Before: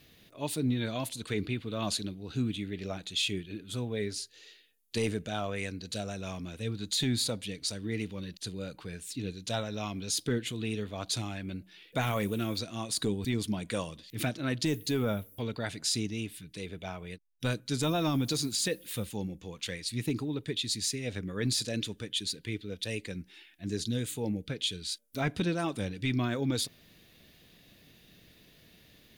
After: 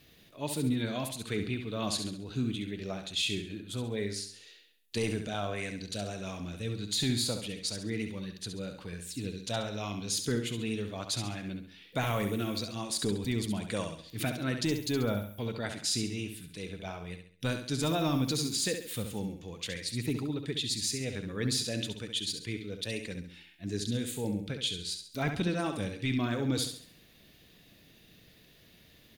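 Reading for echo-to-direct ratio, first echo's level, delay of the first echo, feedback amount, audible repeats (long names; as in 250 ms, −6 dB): −6.5 dB, −7.5 dB, 68 ms, 40%, 4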